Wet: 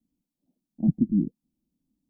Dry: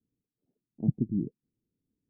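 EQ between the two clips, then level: bass shelf 430 Hz +6 dB; static phaser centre 420 Hz, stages 6; +3.5 dB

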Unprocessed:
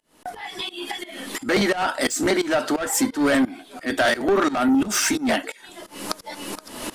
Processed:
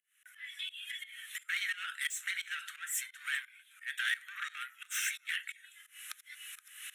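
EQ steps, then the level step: steep high-pass 1.5 kHz 36 dB/octave; dynamic bell 3.9 kHz, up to +6 dB, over -43 dBFS, Q 1.7; static phaser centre 2 kHz, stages 4; -8.5 dB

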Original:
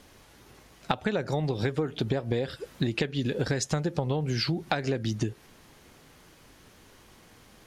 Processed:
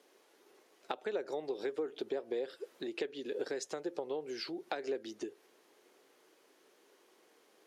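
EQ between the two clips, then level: ladder high-pass 330 Hz, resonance 50%; -2.5 dB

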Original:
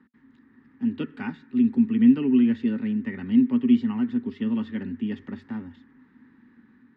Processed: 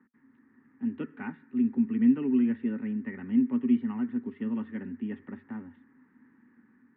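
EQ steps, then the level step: high-pass 160 Hz 6 dB/octave; low-pass 2.3 kHz 24 dB/octave; -4.0 dB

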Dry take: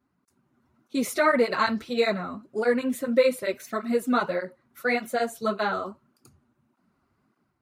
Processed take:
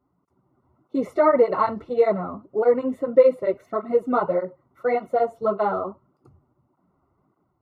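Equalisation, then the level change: Savitzky-Golay filter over 65 samples; peaking EQ 230 Hz -13.5 dB 0.25 oct; hum notches 50/100/150 Hz; +6.0 dB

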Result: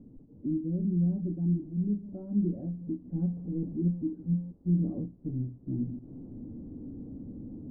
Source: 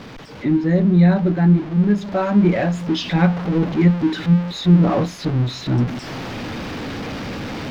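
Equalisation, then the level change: four-pole ladder low-pass 310 Hz, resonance 50%; peaking EQ 210 Hz -8.5 dB 2.3 oct; hum notches 60/120 Hz; 0.0 dB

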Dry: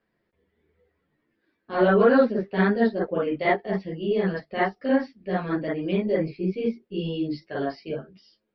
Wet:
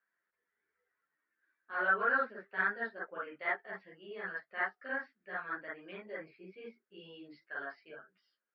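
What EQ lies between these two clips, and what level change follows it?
band-pass filter 1.5 kHz, Q 3.8; 0.0 dB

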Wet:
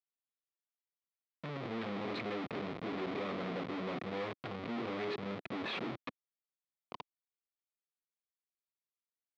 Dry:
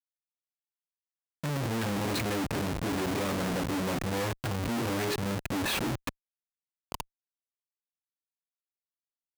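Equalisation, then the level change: cabinet simulation 240–3400 Hz, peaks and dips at 300 Hz -5 dB, 570 Hz -4 dB, 890 Hz -7 dB, 1.6 kHz -8 dB, 2.8 kHz -6 dB; -3.0 dB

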